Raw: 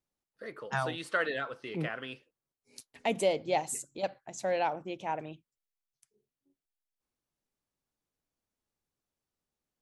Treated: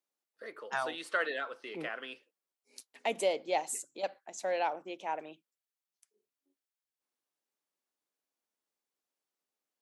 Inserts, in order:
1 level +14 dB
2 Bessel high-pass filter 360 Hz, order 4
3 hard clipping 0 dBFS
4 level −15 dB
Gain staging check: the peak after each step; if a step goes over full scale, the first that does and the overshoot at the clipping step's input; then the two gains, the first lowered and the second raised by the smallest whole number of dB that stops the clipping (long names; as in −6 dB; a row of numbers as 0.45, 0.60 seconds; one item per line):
−1.0, −2.0, −2.0, −17.0 dBFS
no step passes full scale